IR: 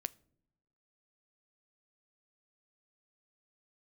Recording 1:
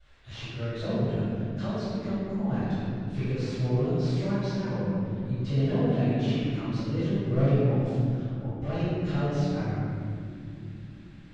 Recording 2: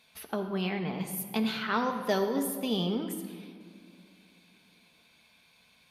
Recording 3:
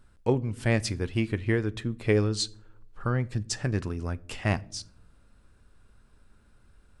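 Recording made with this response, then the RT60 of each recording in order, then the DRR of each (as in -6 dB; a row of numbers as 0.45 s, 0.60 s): 3; no single decay rate, 2.1 s, no single decay rate; -20.5 dB, 4.0 dB, 15.0 dB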